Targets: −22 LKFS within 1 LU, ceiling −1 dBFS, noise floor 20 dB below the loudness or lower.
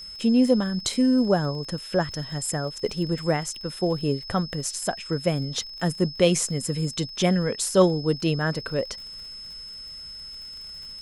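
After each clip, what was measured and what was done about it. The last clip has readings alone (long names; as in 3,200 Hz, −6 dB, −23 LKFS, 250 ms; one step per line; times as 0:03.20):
crackle rate 41 per second; interfering tone 5,200 Hz; level of the tone −37 dBFS; integrated loudness −24.5 LKFS; sample peak −5.5 dBFS; target loudness −22.0 LKFS
→ click removal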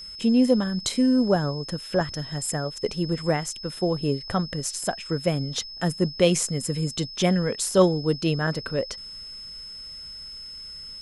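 crackle rate 0 per second; interfering tone 5,200 Hz; level of the tone −37 dBFS
→ notch filter 5,200 Hz, Q 30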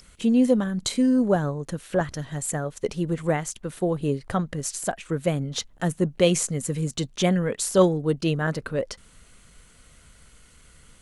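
interfering tone none found; integrated loudness −25.0 LKFS; sample peak −5.5 dBFS; target loudness −22.0 LKFS
→ level +3 dB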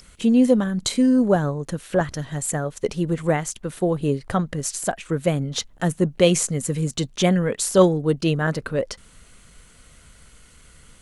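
integrated loudness −22.0 LKFS; sample peak −2.5 dBFS; background noise floor −51 dBFS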